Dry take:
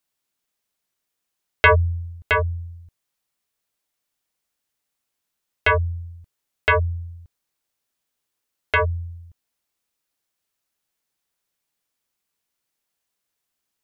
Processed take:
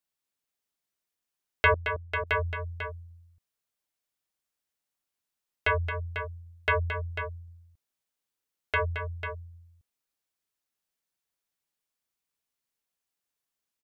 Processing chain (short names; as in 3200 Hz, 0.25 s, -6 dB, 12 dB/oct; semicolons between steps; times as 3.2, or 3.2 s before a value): 1.74–2.27 vocal tract filter i; tapped delay 0.221/0.495 s -9/-9 dB; gain -8 dB